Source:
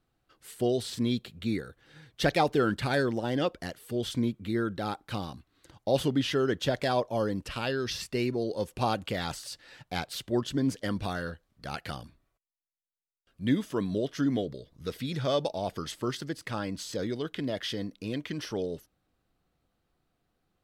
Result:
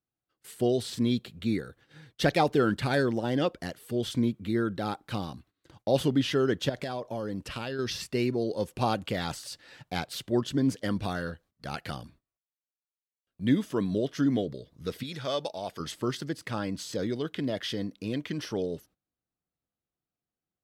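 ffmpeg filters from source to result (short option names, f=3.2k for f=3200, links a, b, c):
-filter_complex "[0:a]asettb=1/sr,asplit=3[a][b][c];[a]atrim=end=6.694[d];[b]atrim=start=6.69:end=7.79,asetpts=PTS-STARTPTS,afade=t=in:d=0.004:c=qsin,afade=t=out:st=1.096:d=0.004:c=qsin,acompressor=threshold=-31dB:ratio=6:attack=3.2:release=140:knee=1:detection=peak[e];[c]atrim=start=7.786[f];[d][e]acrossfade=d=0.004:c1=hsin:c2=qsin[g];[g][f]acrossfade=d=0.004:c1=qsin:c2=hsin,asettb=1/sr,asplit=3[h][i][j];[h]atrim=end=15.034[k];[i]atrim=start=15.03:end=15.8,asetpts=PTS-STARTPTS,afade=t=in:d=0.004:c=qsin,afade=t=out:st=0.766:d=0.004:c=qsin,lowshelf=f=480:g=-10.5[l];[j]atrim=start=15.796[m];[k][l]acrossfade=d=0.004:c1=hsin:c2=qsin[n];[n][m]acrossfade=d=0.004:c1=qsin:c2=hsin,agate=range=-18dB:threshold=-57dB:ratio=16:detection=peak,highpass=f=160:p=1,lowshelf=f=240:g=7.5"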